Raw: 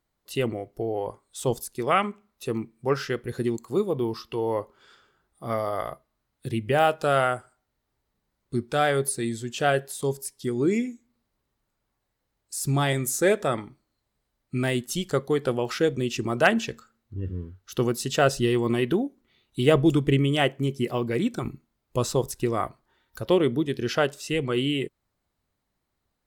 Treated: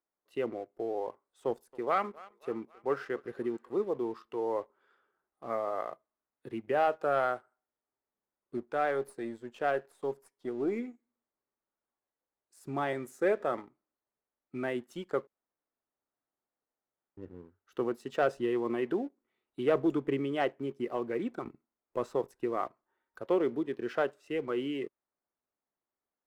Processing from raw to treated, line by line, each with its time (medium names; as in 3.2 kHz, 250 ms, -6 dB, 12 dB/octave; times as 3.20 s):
1.46–3.94 s: thinning echo 267 ms, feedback 67%, level -20.5 dB
8.57–10.79 s: partial rectifier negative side -3 dB
15.27–17.17 s: room tone
whole clip: three-band isolator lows -19 dB, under 250 Hz, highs -20 dB, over 2.1 kHz; waveshaping leveller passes 1; trim -8.5 dB